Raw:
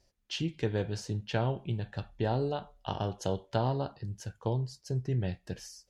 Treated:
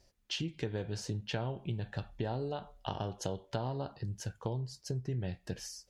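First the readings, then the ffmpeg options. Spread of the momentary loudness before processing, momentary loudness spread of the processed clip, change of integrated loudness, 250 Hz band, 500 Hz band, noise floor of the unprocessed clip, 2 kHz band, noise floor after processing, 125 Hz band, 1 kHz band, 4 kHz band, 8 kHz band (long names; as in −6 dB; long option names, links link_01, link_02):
8 LU, 4 LU, −4.5 dB, −4.5 dB, −5.5 dB, −72 dBFS, −3.0 dB, −70 dBFS, −4.5 dB, −5.5 dB, −1.0 dB, +1.5 dB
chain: -af "acompressor=threshold=-37dB:ratio=4,volume=3dB"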